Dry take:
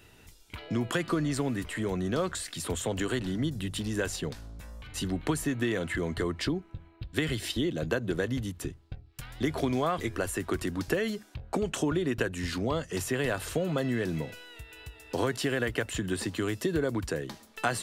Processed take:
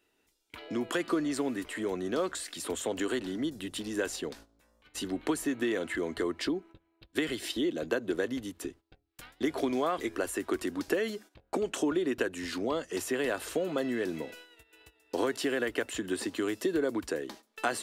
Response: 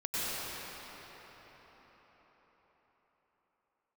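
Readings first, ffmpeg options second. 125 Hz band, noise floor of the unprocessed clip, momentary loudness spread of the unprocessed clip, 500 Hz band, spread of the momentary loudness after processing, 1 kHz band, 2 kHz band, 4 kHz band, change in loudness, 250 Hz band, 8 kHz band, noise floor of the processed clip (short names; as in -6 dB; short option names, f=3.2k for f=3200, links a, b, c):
-14.5 dB, -57 dBFS, 11 LU, 0.0 dB, 9 LU, -1.5 dB, -2.0 dB, -2.0 dB, -1.5 dB, -1.0 dB, -2.0 dB, -74 dBFS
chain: -af "lowshelf=f=200:t=q:w=1.5:g=-12,agate=range=-14dB:threshold=-47dB:ratio=16:detection=peak,volume=-2dB"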